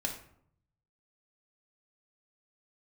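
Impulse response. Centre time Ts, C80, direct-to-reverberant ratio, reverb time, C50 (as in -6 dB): 19 ms, 12.0 dB, 1.0 dB, 0.65 s, 8.0 dB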